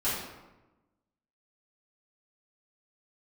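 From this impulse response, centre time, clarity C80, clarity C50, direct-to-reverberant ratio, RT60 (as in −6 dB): 67 ms, 3.5 dB, 0.5 dB, −12.5 dB, 1.1 s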